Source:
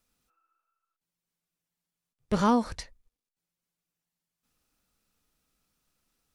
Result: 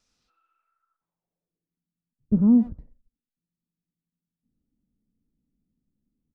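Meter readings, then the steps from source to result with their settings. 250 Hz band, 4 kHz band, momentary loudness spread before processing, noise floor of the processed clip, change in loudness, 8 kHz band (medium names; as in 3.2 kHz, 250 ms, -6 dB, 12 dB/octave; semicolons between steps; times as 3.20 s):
+8.5 dB, under -30 dB, 16 LU, under -85 dBFS, +6.0 dB, under -30 dB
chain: low-pass sweep 5.8 kHz -> 240 Hz, 0.14–1.86 s; speakerphone echo 90 ms, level -15 dB; trim +1.5 dB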